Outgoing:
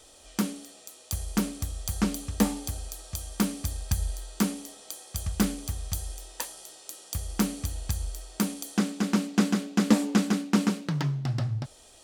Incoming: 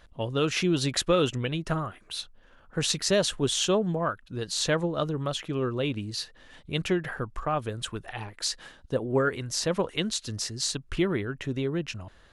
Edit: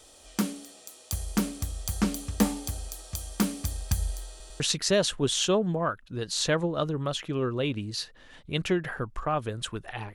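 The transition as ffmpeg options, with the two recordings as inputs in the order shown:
-filter_complex "[0:a]apad=whole_dur=10.14,atrim=end=10.14,asplit=3[s0][s1][s2];[s0]atrim=end=4.402[s3];[s1]atrim=start=4.298:end=4.402[s4];[s2]atrim=start=4.298:end=4.402[s5];[1:a]atrim=start=2.798:end=8.34[s6];[s3][s4]acrossfade=d=0.004:c1=hsin:c2=hsin[s7];[s7][s5]acrossfade=d=0.004:c1=hsin:c2=hsin[s8];[s8][s6]acrossfade=d=0.004:c1=hsin:c2=hsin"

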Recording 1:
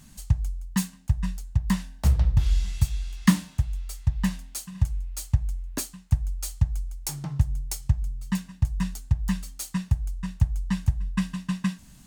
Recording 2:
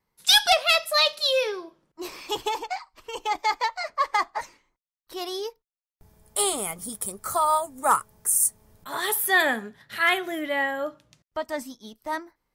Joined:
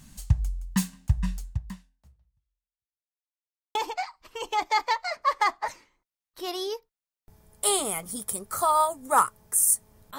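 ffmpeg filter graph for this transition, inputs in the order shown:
-filter_complex "[0:a]apad=whole_dur=10.18,atrim=end=10.18,asplit=2[s0][s1];[s0]atrim=end=3.14,asetpts=PTS-STARTPTS,afade=t=out:st=1.45:d=1.69:c=exp[s2];[s1]atrim=start=3.14:end=3.75,asetpts=PTS-STARTPTS,volume=0[s3];[1:a]atrim=start=2.48:end=8.91,asetpts=PTS-STARTPTS,afade=t=in:d=0.004:c=hsin[s4];[s2][s3][s4]concat=n=3:v=0:a=1"

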